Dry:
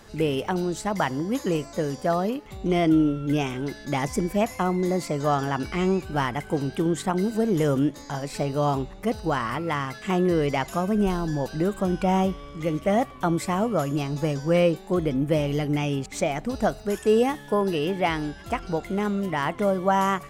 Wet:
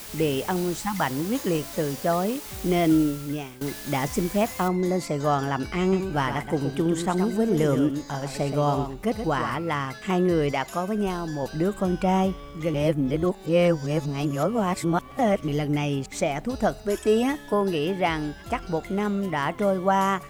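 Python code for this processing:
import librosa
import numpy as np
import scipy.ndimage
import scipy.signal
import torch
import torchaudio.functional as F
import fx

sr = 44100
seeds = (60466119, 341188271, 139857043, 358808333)

y = fx.spec_erase(x, sr, start_s=0.79, length_s=0.22, low_hz=340.0, high_hz=770.0)
y = fx.noise_floor_step(y, sr, seeds[0], at_s=4.68, before_db=-40, after_db=-67, tilt_db=0.0)
y = fx.echo_single(y, sr, ms=123, db=-8.0, at=(5.8, 9.54))
y = fx.low_shelf(y, sr, hz=220.0, db=-8.0, at=(10.52, 11.43))
y = fx.comb(y, sr, ms=3.1, depth=0.65, at=(16.87, 17.53))
y = fx.edit(y, sr, fx.fade_out_to(start_s=2.91, length_s=0.7, floor_db=-17.5),
    fx.reverse_span(start_s=12.74, length_s=2.74), tone=tone)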